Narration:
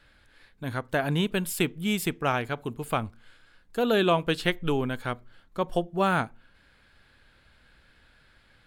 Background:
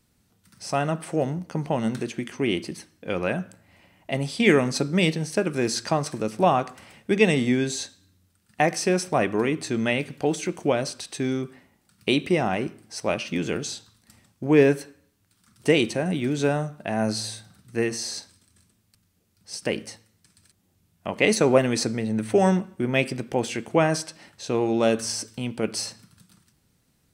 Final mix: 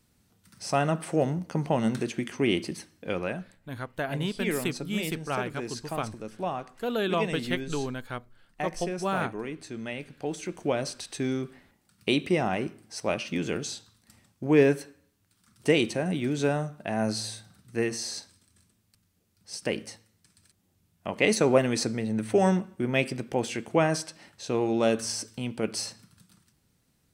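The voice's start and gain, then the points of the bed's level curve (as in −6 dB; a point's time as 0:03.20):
3.05 s, −5.0 dB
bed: 0:03.01 −0.5 dB
0:03.58 −12 dB
0:09.91 −12 dB
0:10.91 −3 dB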